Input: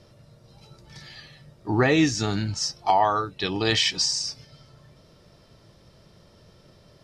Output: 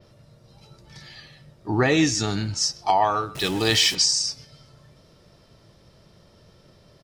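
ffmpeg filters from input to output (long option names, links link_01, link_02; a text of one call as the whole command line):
ffmpeg -i in.wav -filter_complex "[0:a]asettb=1/sr,asplit=3[link_01][link_02][link_03];[link_01]atrim=end=3.354[link_04];[link_02]atrim=start=3.35:end=3.95,asetpts=PTS-STARTPTS,afade=type=in:duration=0.004:curve=qsin,afade=type=out:start_time=0.596:duration=0.004:curve=qsin,aeval=exprs='val(0)+0.5*0.0299*sgn(val(0))':channel_layout=same[link_05];[link_03]atrim=start=3.946[link_06];[link_04][link_05]acrossfade=duration=0.004:curve1=hsin:curve2=qsin[link_07];[link_07][link_06]acrossfade=duration=0.004:curve1=qsin:curve2=hsin,adynamicequalizer=threshold=0.00891:dfrequency=8600:dqfactor=0.74:tfrequency=8600:tqfactor=0.74:attack=5:release=100:ratio=0.375:range=3.5:mode=boostabove:tftype=bell,asplit=2[link_08][link_09];[link_09]adelay=130,highpass=300,lowpass=3400,asoftclip=type=hard:threshold=-17.5dB,volume=-17dB[link_10];[link_08][link_10]amix=inputs=2:normalize=0" out.wav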